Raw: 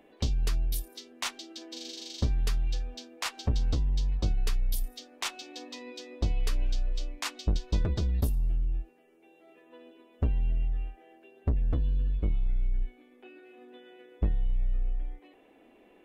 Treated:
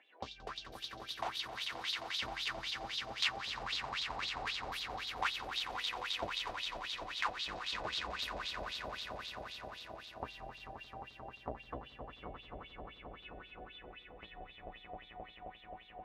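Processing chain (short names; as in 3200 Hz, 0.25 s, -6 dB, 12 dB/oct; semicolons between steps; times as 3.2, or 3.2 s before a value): swelling echo 88 ms, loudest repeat 8, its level -9 dB; wah 3.8 Hz 670–3800 Hz, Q 4.7; gain +8.5 dB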